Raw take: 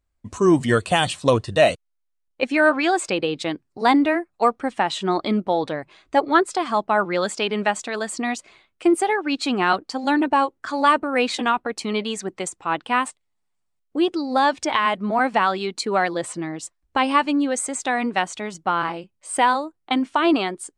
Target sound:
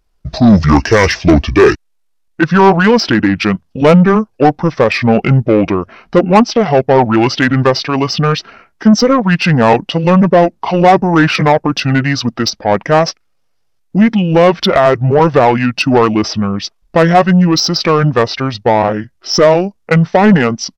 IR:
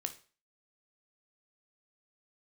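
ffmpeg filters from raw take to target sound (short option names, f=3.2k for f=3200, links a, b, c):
-af "asetrate=27781,aresample=44100,atempo=1.5874,apsyclip=9dB,acontrast=60,volume=-1dB"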